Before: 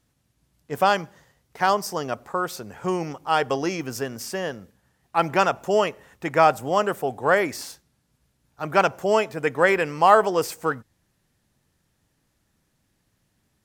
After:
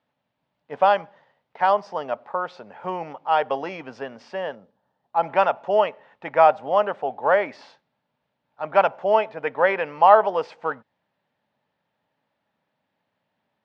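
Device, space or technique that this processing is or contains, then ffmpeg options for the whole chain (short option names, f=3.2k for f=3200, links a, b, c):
kitchen radio: -filter_complex "[0:a]asettb=1/sr,asplit=3[a][b][c];[a]atrim=end=4.554[d];[b]atrim=start=4.55:end=5.23,asetpts=PTS-STARTPTS,afade=t=in:d=0.004:c=qsin,afade=t=out:st=0.676:d=0.004:c=qsin,equalizer=f=2.2k:t=o:w=1.3:g=-11.5[e];[c]atrim=start=5.226[f];[d][e]acrossfade=d=0.004:c1=hsin:c2=qsin[g];[g][f]acrossfade=d=0.004:c1=qsin:c2=hsin,highpass=230,equalizer=f=340:t=q:w=4:g=-8,equalizer=f=600:t=q:w=4:g=7,equalizer=f=880:t=q:w=4:g=8,lowpass=f=3.6k:w=0.5412,lowpass=f=3.6k:w=1.3066,volume=-3dB"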